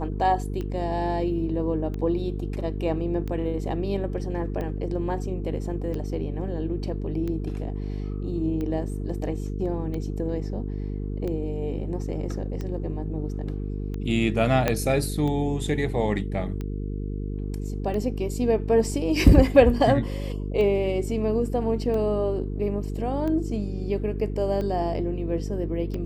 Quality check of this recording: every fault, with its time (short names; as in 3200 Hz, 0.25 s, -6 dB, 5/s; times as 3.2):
buzz 50 Hz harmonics 9 -30 dBFS
tick 45 rpm -21 dBFS
14.68 pop -8 dBFS